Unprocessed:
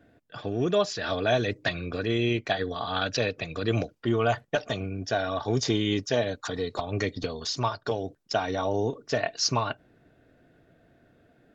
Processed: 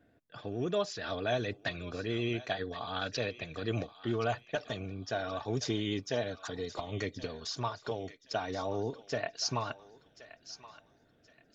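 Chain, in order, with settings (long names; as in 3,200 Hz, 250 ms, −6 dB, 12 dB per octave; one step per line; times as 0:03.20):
pitch vibrato 11 Hz 30 cents
feedback echo with a high-pass in the loop 1,074 ms, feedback 39%, high-pass 1,200 Hz, level −13 dB
level −7.5 dB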